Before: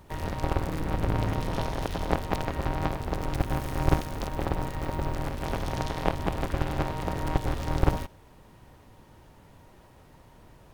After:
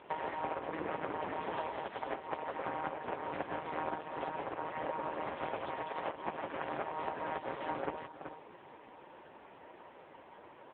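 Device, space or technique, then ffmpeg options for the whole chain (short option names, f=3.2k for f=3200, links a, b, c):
voicemail: -af "highpass=350,lowpass=3k,bandreject=f=60:t=h:w=6,bandreject=f=120:t=h:w=6,bandreject=f=180:t=h:w=6,bandreject=f=240:t=h:w=6,aecho=1:1:379:0.0841,acompressor=threshold=-39dB:ratio=6,volume=8dB" -ar 8000 -c:a libopencore_amrnb -b:a 5150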